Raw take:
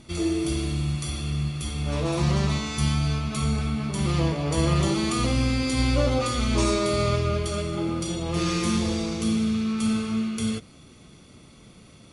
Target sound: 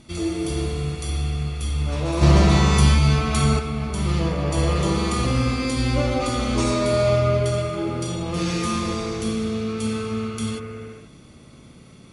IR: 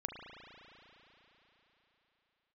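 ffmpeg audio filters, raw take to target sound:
-filter_complex "[1:a]atrim=start_sample=2205,afade=type=out:start_time=0.36:duration=0.01,atrim=end_sample=16317,asetrate=27342,aresample=44100[link_01];[0:a][link_01]afir=irnorm=-1:irlink=0,asplit=3[link_02][link_03][link_04];[link_02]afade=type=out:start_time=2.21:duration=0.02[link_05];[link_03]acontrast=74,afade=type=in:start_time=2.21:duration=0.02,afade=type=out:start_time=3.58:duration=0.02[link_06];[link_04]afade=type=in:start_time=3.58:duration=0.02[link_07];[link_05][link_06][link_07]amix=inputs=3:normalize=0"

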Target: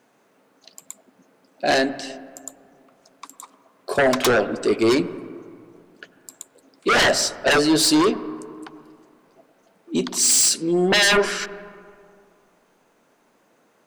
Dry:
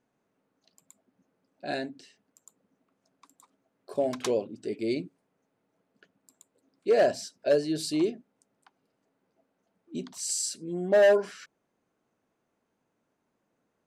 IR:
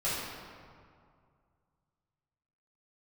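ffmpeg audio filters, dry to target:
-filter_complex "[0:a]highpass=frequency=410:poles=1,aeval=exprs='0.224*sin(PI/2*5.62*val(0)/0.224)':channel_layout=same,asplit=2[link_01][link_02];[1:a]atrim=start_sample=2205,lowpass=2100,adelay=92[link_03];[link_02][link_03]afir=irnorm=-1:irlink=0,volume=-22dB[link_04];[link_01][link_04]amix=inputs=2:normalize=0"

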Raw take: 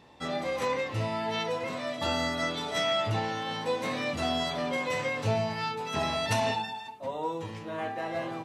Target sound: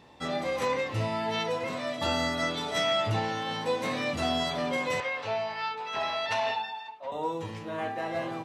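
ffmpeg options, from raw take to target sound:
ffmpeg -i in.wav -filter_complex "[0:a]asettb=1/sr,asplit=3[link_01][link_02][link_03];[link_01]atrim=end=5.004[link_04];[link_02]atrim=start=5:end=7.12,asetpts=PTS-STARTPTS,afade=type=in:duration=0.004:curve=qsin,afade=type=out:start_time=2.116:duration=0.004:curve=qsin,acrossover=split=500 4900:gain=0.126 1 0.0891[link_05][link_06][link_07];[link_05][link_06][link_07]amix=inputs=3:normalize=0[link_08];[link_03]atrim=start=7.116[link_09];[link_04][link_08]acrossfade=duration=0.004:curve1=hsin:curve2=qsin[link_10];[link_10][link_09]acrossfade=duration=0.004:curve1=qsin:curve2=hsin,volume=1dB" out.wav

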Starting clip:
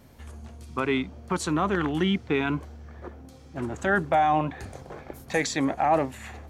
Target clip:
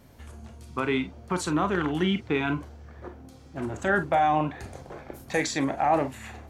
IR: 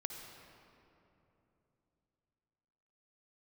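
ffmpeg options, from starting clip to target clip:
-filter_complex "[1:a]atrim=start_sample=2205,atrim=end_sample=4410,asetrate=83790,aresample=44100[link_01];[0:a][link_01]afir=irnorm=-1:irlink=0,volume=7.5dB"

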